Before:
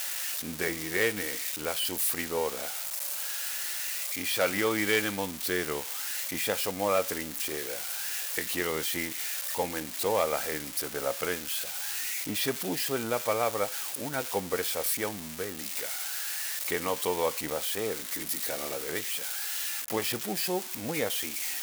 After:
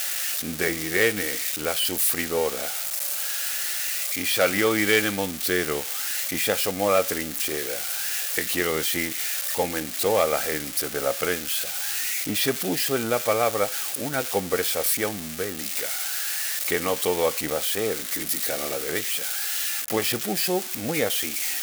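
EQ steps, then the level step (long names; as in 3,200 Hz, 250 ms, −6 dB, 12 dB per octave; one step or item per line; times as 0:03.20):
notch filter 970 Hz, Q 5.5
+6.0 dB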